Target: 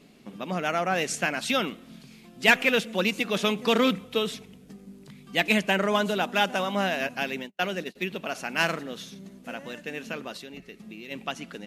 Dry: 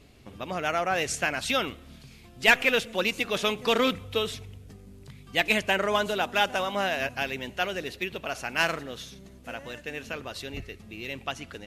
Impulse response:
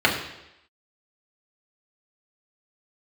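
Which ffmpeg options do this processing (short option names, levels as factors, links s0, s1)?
-filter_complex "[0:a]asplit=3[s0][s1][s2];[s0]afade=t=out:st=7.42:d=0.02[s3];[s1]agate=range=0.01:threshold=0.0224:ratio=16:detection=peak,afade=t=in:st=7.42:d=0.02,afade=t=out:st=7.95:d=0.02[s4];[s2]afade=t=in:st=7.95:d=0.02[s5];[s3][s4][s5]amix=inputs=3:normalize=0,lowshelf=f=130:t=q:w=3:g=-12,asplit=3[s6][s7][s8];[s6]afade=t=out:st=10.36:d=0.02[s9];[s7]acompressor=threshold=0.0126:ratio=10,afade=t=in:st=10.36:d=0.02,afade=t=out:st=11.1:d=0.02[s10];[s8]afade=t=in:st=11.1:d=0.02[s11];[s9][s10][s11]amix=inputs=3:normalize=0"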